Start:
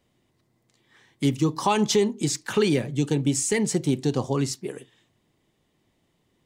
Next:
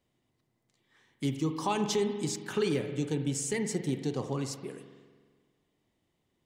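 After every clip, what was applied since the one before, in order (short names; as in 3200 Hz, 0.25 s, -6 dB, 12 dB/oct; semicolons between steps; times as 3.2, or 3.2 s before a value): spring tank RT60 1.6 s, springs 44 ms, chirp 65 ms, DRR 7 dB; gain -8.5 dB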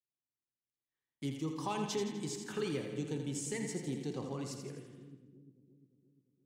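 gate -59 dBFS, range -23 dB; split-band echo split 340 Hz, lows 0.349 s, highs 83 ms, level -7 dB; gain -7.5 dB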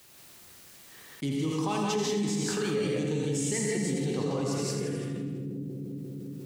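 non-linear reverb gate 0.21 s rising, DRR -2 dB; fast leveller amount 70%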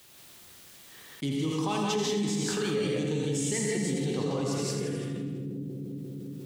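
bell 3400 Hz +4 dB 0.41 oct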